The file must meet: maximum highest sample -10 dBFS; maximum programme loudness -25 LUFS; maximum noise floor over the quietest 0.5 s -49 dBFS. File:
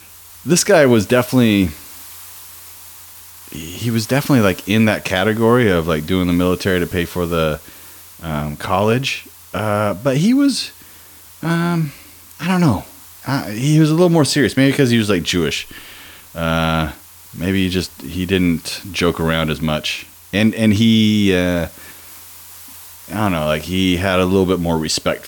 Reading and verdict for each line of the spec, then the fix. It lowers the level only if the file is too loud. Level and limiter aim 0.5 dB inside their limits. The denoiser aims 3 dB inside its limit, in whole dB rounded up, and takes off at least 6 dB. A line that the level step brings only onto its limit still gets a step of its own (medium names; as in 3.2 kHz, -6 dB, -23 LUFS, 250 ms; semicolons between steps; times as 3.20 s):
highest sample -2.5 dBFS: fail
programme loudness -16.5 LUFS: fail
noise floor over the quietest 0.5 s -42 dBFS: fail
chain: trim -9 dB